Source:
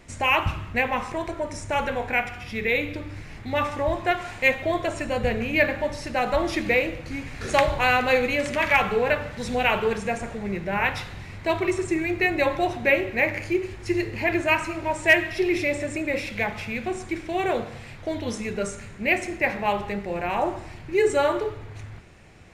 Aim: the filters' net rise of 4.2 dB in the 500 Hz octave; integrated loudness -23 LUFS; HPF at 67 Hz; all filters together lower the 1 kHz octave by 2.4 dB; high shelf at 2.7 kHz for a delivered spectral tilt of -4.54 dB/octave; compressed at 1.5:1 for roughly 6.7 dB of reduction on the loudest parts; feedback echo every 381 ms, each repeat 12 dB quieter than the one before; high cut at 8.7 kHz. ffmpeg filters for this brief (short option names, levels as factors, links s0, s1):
-af "highpass=67,lowpass=8700,equalizer=f=500:t=o:g=7,equalizer=f=1000:t=o:g=-6,highshelf=f=2700:g=-6,acompressor=threshold=0.0282:ratio=1.5,aecho=1:1:381|762|1143:0.251|0.0628|0.0157,volume=1.88"